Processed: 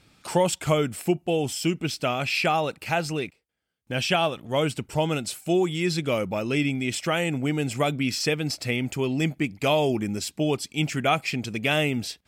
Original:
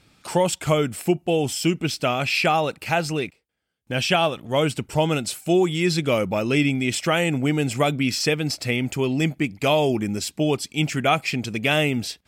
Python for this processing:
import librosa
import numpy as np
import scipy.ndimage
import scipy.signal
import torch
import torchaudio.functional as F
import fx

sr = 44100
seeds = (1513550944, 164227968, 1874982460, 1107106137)

y = fx.rider(x, sr, range_db=10, speed_s=2.0)
y = y * librosa.db_to_amplitude(-3.5)